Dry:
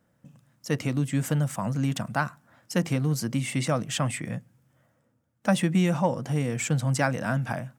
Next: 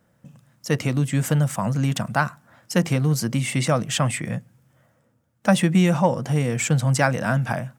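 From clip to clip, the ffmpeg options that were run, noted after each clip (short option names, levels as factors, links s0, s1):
-af "equalizer=f=280:w=4.7:g=-4,volume=1.88"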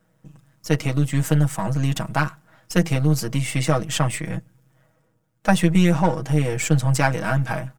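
-af "aeval=exprs='if(lt(val(0),0),0.447*val(0),val(0))':c=same,aecho=1:1:6.3:0.67"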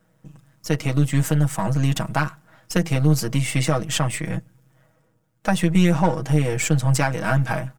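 -af "alimiter=limit=0.422:level=0:latency=1:release=239,volume=1.19"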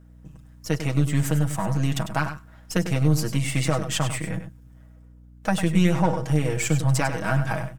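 -af "aeval=exprs='val(0)+0.00501*(sin(2*PI*60*n/s)+sin(2*PI*2*60*n/s)/2+sin(2*PI*3*60*n/s)/3+sin(2*PI*4*60*n/s)/4+sin(2*PI*5*60*n/s)/5)':c=same,aecho=1:1:99:0.316,volume=0.708"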